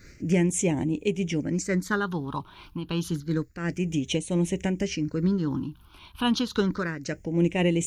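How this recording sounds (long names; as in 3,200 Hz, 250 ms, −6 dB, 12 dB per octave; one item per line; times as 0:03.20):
a quantiser's noise floor 12 bits, dither none
phaser sweep stages 6, 0.29 Hz, lowest notch 510–1,300 Hz
amplitude modulation by smooth noise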